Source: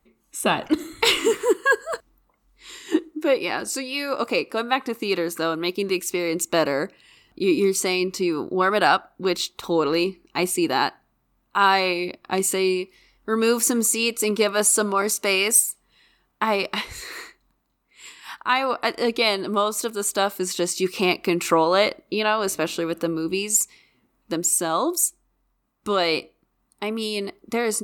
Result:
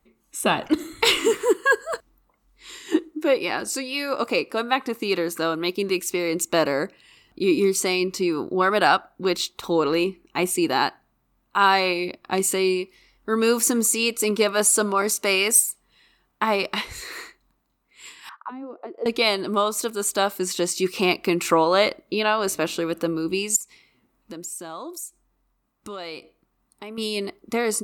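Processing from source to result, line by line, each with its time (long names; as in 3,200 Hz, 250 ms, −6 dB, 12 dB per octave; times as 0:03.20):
0:09.94–0:10.51: parametric band 4,700 Hz −12.5 dB 0.23 octaves
0:18.29–0:19.06: envelope filter 260–1,500 Hz, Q 4.8, down, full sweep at −17 dBFS
0:23.56–0:26.98: downward compressor 2.5 to 1, threshold −38 dBFS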